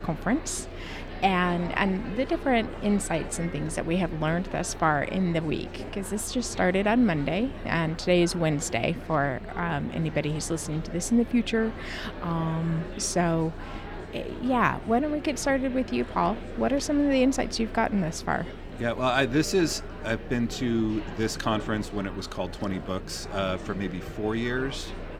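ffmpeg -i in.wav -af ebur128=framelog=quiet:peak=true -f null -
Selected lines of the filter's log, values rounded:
Integrated loudness:
  I:         -27.2 LUFS
  Threshold: -37.3 LUFS
Loudness range:
  LRA:         3.8 LU
  Threshold: -47.2 LUFS
  LRA low:   -29.4 LUFS
  LRA high:  -25.6 LUFS
True peak:
  Peak:       -7.3 dBFS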